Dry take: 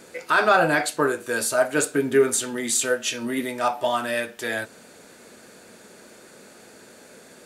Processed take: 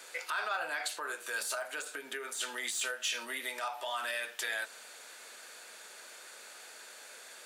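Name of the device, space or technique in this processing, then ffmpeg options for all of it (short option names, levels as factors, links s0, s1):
broadcast voice chain: -af "highpass=94,deesser=0.5,acompressor=threshold=0.0501:ratio=4,equalizer=f=3300:t=o:w=0.7:g=3,alimiter=limit=0.075:level=0:latency=1:release=82,highpass=910"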